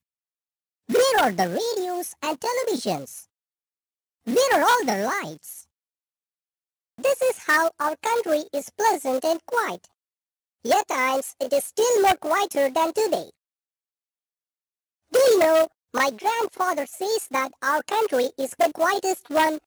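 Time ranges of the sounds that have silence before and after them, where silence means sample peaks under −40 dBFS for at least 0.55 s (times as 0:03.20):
0:00.89–0:03.23
0:04.27–0:05.61
0:06.98–0:09.85
0:10.65–0:13.30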